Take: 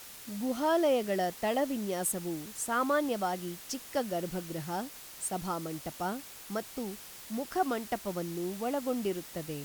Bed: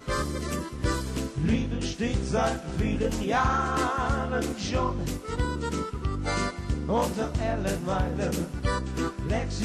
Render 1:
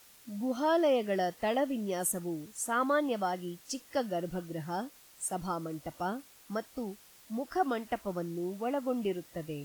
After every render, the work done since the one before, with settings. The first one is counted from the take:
noise reduction from a noise print 10 dB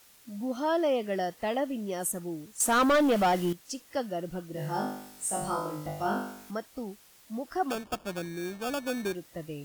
0:02.60–0:03.53: leveller curve on the samples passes 3
0:04.52–0:06.51: flutter between parallel walls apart 3.4 metres, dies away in 0.7 s
0:07.70–0:09.15: sample-rate reduction 2,000 Hz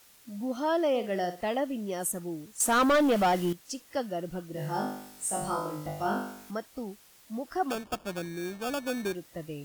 0:00.89–0:01.41: flutter between parallel walls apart 9.6 metres, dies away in 0.3 s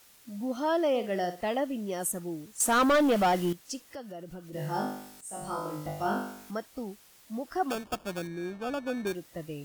0:03.81–0:04.53: downward compressor 2.5 to 1, threshold −42 dBFS
0:05.21–0:05.75: fade in, from −14.5 dB
0:08.27–0:09.07: low-pass filter 2,100 Hz 6 dB per octave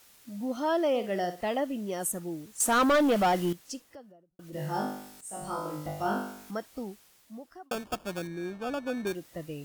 0:03.58–0:04.39: fade out and dull
0:06.84–0:07.71: fade out linear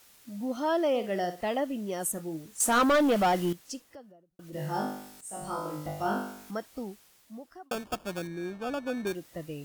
0:02.15–0:02.82: double-tracking delay 25 ms −10.5 dB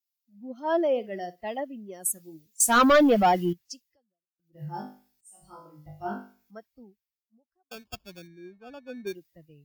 spectral dynamics exaggerated over time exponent 1.5
multiband upward and downward expander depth 70%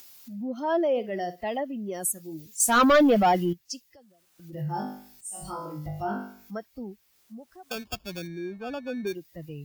upward compression, threshold −23 dBFS
transient designer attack −2 dB, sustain +3 dB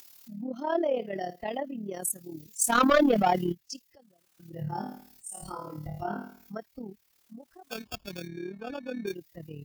amplitude modulation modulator 37 Hz, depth 55%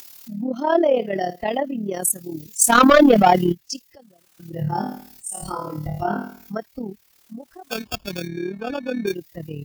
level +10 dB
brickwall limiter −2 dBFS, peak gain reduction 2 dB

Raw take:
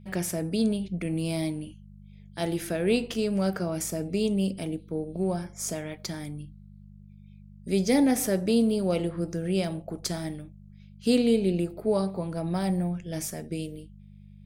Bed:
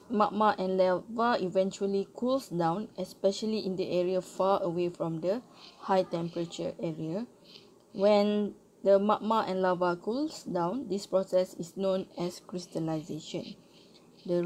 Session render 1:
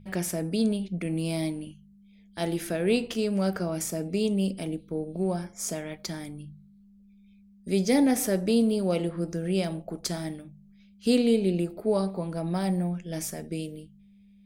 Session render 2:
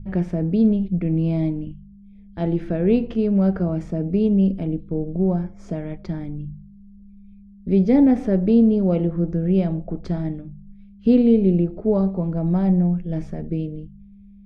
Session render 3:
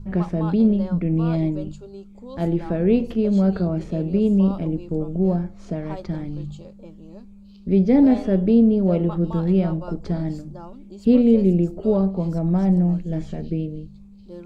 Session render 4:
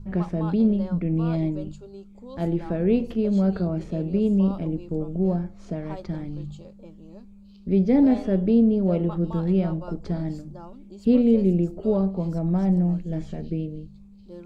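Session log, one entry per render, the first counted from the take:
hum removal 50 Hz, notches 3
low-pass filter 3,400 Hz 12 dB per octave; spectral tilt −4 dB per octave
mix in bed −10 dB
level −3 dB

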